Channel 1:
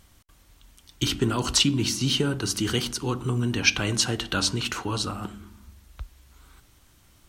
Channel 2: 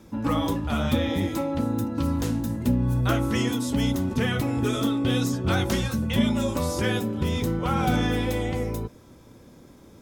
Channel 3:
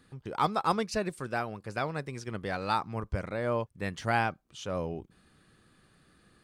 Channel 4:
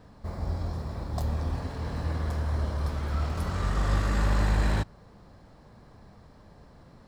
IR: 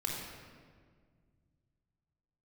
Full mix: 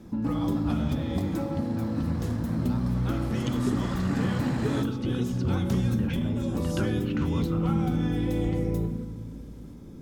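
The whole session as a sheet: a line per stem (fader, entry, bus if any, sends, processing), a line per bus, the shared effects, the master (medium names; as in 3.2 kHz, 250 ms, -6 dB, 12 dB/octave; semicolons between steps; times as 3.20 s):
-8.0 dB, 2.45 s, no send, low-pass that closes with the level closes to 650 Hz, closed at -20 dBFS
-8.5 dB, 0.00 s, send -6 dB, peaking EQ 200 Hz +12 dB 1.6 oct; compression, threshold -20 dBFS, peak gain reduction 13.5 dB
-18.0 dB, 0.00 s, no send, none
-5.0 dB, 0.00 s, no send, steep high-pass 150 Hz 96 dB/octave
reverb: on, RT60 1.8 s, pre-delay 23 ms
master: bass shelf 61 Hz +10.5 dB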